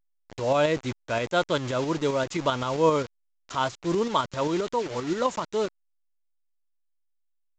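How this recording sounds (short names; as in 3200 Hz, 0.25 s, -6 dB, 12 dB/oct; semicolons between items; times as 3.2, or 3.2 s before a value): a quantiser's noise floor 6-bit, dither none; tremolo saw up 7.6 Hz, depth 45%; A-law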